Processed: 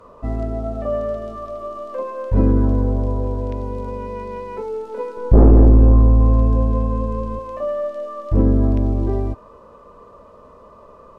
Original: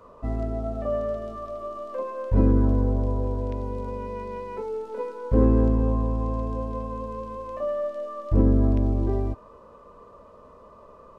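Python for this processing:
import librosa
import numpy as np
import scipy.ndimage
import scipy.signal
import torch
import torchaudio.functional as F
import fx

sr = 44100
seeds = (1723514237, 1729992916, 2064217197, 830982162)

y = fx.low_shelf(x, sr, hz=280.0, db=12.0, at=(5.17, 7.39))
y = fx.fold_sine(y, sr, drive_db=6, ceiling_db=1.0)
y = y * 10.0 ** (-5.5 / 20.0)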